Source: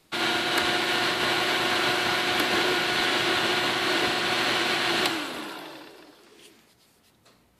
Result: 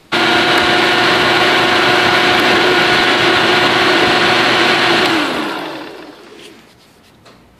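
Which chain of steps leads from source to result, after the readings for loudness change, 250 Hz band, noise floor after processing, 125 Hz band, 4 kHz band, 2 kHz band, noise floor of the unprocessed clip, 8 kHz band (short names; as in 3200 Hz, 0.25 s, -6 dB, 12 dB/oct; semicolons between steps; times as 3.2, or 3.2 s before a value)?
+13.0 dB, +14.5 dB, -46 dBFS, +15.0 dB, +11.5 dB, +13.5 dB, -62 dBFS, +7.5 dB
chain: high shelf 5600 Hz -11 dB; maximiser +18.5 dB; gain -1 dB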